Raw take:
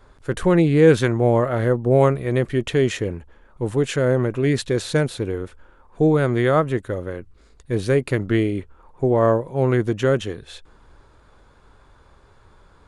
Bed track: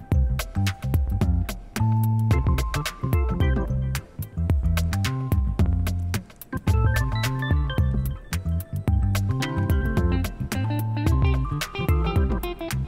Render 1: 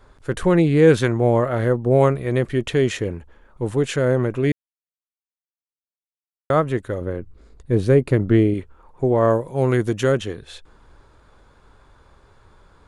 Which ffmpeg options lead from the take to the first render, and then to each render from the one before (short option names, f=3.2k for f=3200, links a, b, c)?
-filter_complex "[0:a]asettb=1/sr,asplit=3[a][b][c];[a]atrim=end=7.014[d];[b]atrim=start=7.01:end=8.54,asetpts=PTS-STARTPTS,afade=t=in:d=0.004:c=qsin,afade=t=out:st=1.526:d=0.004:c=qsin,tiltshelf=f=930:g=5[e];[c]atrim=start=8.536[f];[d][e]acrossfade=d=0.004:c1=hsin:c2=qsin[g];[g][f]acrossfade=d=0.004:c1=qsin:c2=hsin,asettb=1/sr,asplit=3[h][i][j];[h]atrim=end=9.304[k];[i]atrim=start=9.3:end=10.12,asetpts=PTS-STARTPTS,afade=t=in:d=0.004:c=qsin,afade=t=out:st=0.816:d=0.004:c=qsin,highshelf=f=6.4k:g=11.5[l];[j]atrim=start=10.116[m];[k][l]acrossfade=d=0.004:c1=hsin:c2=qsin[n];[n][m]acrossfade=d=0.004:c1=qsin:c2=hsin,asplit=3[o][p][q];[o]atrim=end=4.52,asetpts=PTS-STARTPTS,afade=t=out:st=4.516:d=0.004:c=hsin[r];[p]atrim=start=4.52:end=6.5,asetpts=PTS-STARTPTS,volume=0[s];[q]atrim=start=6.5,asetpts=PTS-STARTPTS,afade=t=in:d=0.004:c=hsin[t];[r][s][t]concat=n=3:v=0:a=1"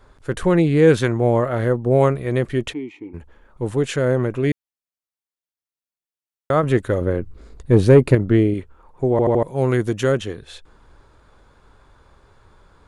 -filter_complex "[0:a]asplit=3[a][b][c];[a]afade=t=out:st=2.72:d=0.02[d];[b]asplit=3[e][f][g];[e]bandpass=f=300:t=q:w=8,volume=0dB[h];[f]bandpass=f=870:t=q:w=8,volume=-6dB[i];[g]bandpass=f=2.24k:t=q:w=8,volume=-9dB[j];[h][i][j]amix=inputs=3:normalize=0,afade=t=in:st=2.72:d=0.02,afade=t=out:st=3.13:d=0.02[k];[c]afade=t=in:st=3.13:d=0.02[l];[d][k][l]amix=inputs=3:normalize=0,asettb=1/sr,asplit=3[m][n][o];[m]atrim=end=6.634[p];[n]atrim=start=6.63:end=8.15,asetpts=PTS-STARTPTS,afade=t=in:d=0.004:c=qsin,afade=t=out:st=1.516:d=0.004:c=qsin,acontrast=52[q];[o]atrim=start=8.146[r];[p][q]acrossfade=d=0.004:c1=hsin:c2=qsin[s];[s][r]acrossfade=d=0.004:c1=qsin:c2=hsin,asplit=5[t][u][v][w][x];[t]atrim=end=9.192[y];[u]atrim=start=9.108:end=9.192[z];[v]atrim=start=9.108:end=9.192[aa];[w]atrim=start=9.108:end=9.192[ab];[x]atrim=start=9.428[ac];[y][z]acrossfade=d=0.004:c1=hsin:c2=hsin[ad];[ad][aa]acrossfade=d=0.004:c1=hsin:c2=hsin[ae];[ae][ab]acrossfade=d=0.004:c1=hsin:c2=hsin[af];[af][ac]acrossfade=d=0.004:c1=hsin:c2=hsin"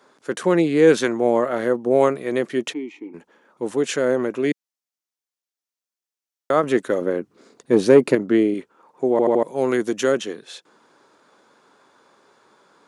-af "highpass=f=210:w=0.5412,highpass=f=210:w=1.3066,equalizer=f=5.9k:w=1.7:g=5.5"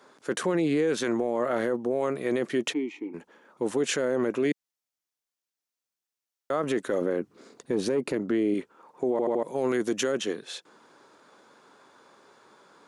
-af "acompressor=threshold=-18dB:ratio=6,alimiter=limit=-17.5dB:level=0:latency=1:release=15"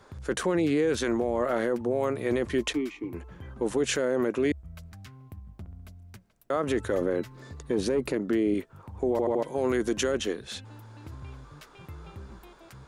-filter_complex "[1:a]volume=-22dB[a];[0:a][a]amix=inputs=2:normalize=0"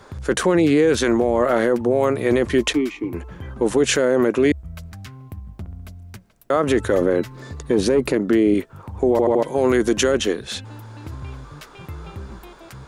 -af "volume=9dB"